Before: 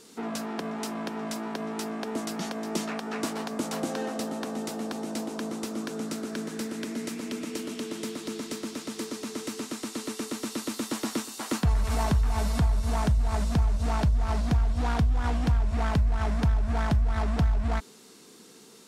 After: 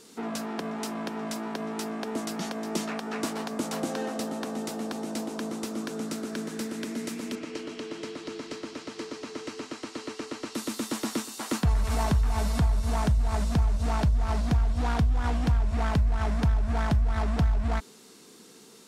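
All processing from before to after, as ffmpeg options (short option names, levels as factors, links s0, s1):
-filter_complex "[0:a]asettb=1/sr,asplit=3[s0][s1][s2];[s0]atrim=end=7.354[s3];[s1]atrim=start=7.35:end=10.55,asetpts=PTS-STARTPTS,afade=t=in:d=0.004:c=qsin,afade=t=out:st=3.196:d=0.004:c=qsin,lowpass=4800,equalizer=f=210:w=4.3:g=-13,bandreject=f=3600:w=15[s4];[s2]atrim=start=10.546[s5];[s3][s4]acrossfade=d=0.004:c1=hsin:c2=qsin[s6];[s6][s5]acrossfade=d=0.004:c1=qsin:c2=hsin"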